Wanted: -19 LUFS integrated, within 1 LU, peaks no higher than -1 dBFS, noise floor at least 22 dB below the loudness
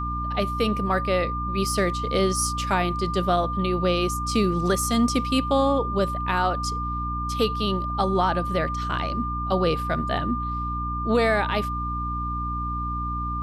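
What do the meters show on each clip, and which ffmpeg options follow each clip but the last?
hum 60 Hz; highest harmonic 300 Hz; hum level -28 dBFS; steady tone 1.2 kHz; tone level -28 dBFS; loudness -24.5 LUFS; peak level -9.0 dBFS; loudness target -19.0 LUFS
-> -af "bandreject=f=60:t=h:w=6,bandreject=f=120:t=h:w=6,bandreject=f=180:t=h:w=6,bandreject=f=240:t=h:w=6,bandreject=f=300:t=h:w=6"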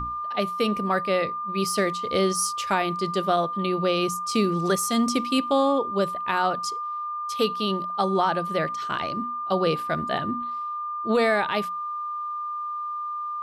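hum not found; steady tone 1.2 kHz; tone level -28 dBFS
-> -af "bandreject=f=1200:w=30"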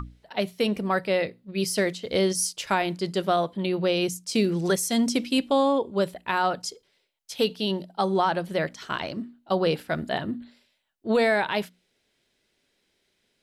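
steady tone not found; loudness -26.0 LUFS; peak level -9.5 dBFS; loudness target -19.0 LUFS
-> -af "volume=2.24"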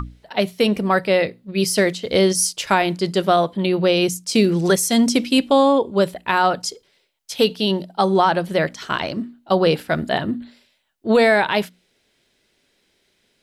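loudness -19.0 LUFS; peak level -2.5 dBFS; noise floor -66 dBFS

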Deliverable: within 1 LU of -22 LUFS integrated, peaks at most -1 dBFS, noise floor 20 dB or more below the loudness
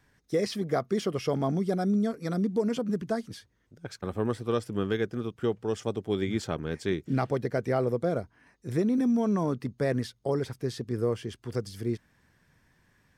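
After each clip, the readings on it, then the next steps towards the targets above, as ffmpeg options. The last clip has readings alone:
loudness -30.0 LUFS; peak level -15.0 dBFS; loudness target -22.0 LUFS
-> -af "volume=2.51"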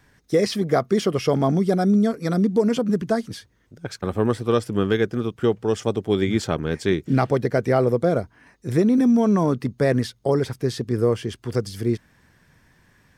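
loudness -22.0 LUFS; peak level -7.0 dBFS; noise floor -60 dBFS

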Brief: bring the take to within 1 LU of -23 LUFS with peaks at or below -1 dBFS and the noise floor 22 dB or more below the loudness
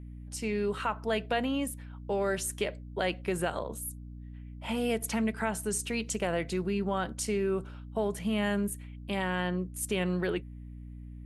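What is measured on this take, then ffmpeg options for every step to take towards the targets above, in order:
hum 60 Hz; highest harmonic 300 Hz; hum level -42 dBFS; loudness -32.0 LUFS; peak level -16.0 dBFS; loudness target -23.0 LUFS
-> -af "bandreject=f=60:t=h:w=4,bandreject=f=120:t=h:w=4,bandreject=f=180:t=h:w=4,bandreject=f=240:t=h:w=4,bandreject=f=300:t=h:w=4"
-af "volume=2.82"

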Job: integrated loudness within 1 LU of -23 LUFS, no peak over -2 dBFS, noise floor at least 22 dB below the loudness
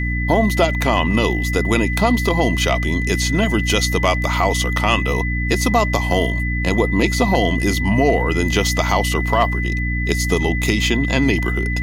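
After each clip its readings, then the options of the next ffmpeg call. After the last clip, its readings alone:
hum 60 Hz; highest harmonic 300 Hz; hum level -19 dBFS; steady tone 2 kHz; tone level -24 dBFS; loudness -18.0 LUFS; peak level -1.0 dBFS; loudness target -23.0 LUFS
-> -af "bandreject=f=60:t=h:w=4,bandreject=f=120:t=h:w=4,bandreject=f=180:t=h:w=4,bandreject=f=240:t=h:w=4,bandreject=f=300:t=h:w=4"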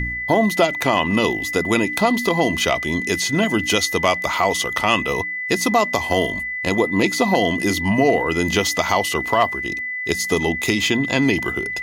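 hum not found; steady tone 2 kHz; tone level -24 dBFS
-> -af "bandreject=f=2000:w=30"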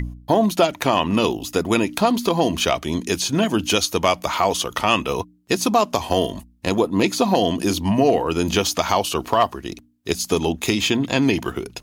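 steady tone not found; loudness -20.5 LUFS; peak level -3.0 dBFS; loudness target -23.0 LUFS
-> -af "volume=0.75"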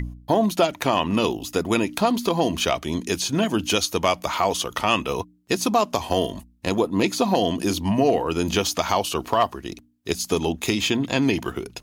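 loudness -23.0 LUFS; peak level -5.5 dBFS; noise floor -54 dBFS

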